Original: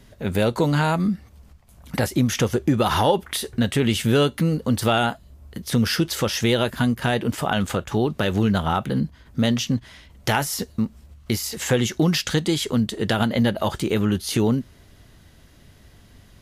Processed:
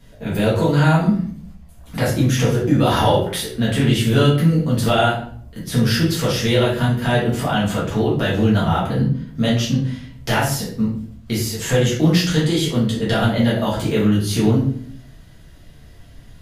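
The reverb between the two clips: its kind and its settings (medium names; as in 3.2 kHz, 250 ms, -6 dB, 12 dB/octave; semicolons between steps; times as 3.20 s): simulated room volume 69 m³, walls mixed, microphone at 1.7 m; trim -5.5 dB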